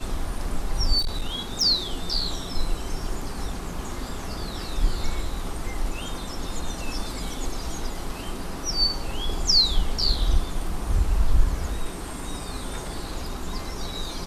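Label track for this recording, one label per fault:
0.980000	1.630000	clipping −21.5 dBFS

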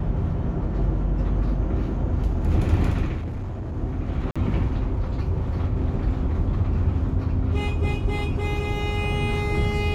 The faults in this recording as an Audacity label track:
3.180000	3.770000	clipping −26.5 dBFS
4.310000	4.360000	drop-out 46 ms

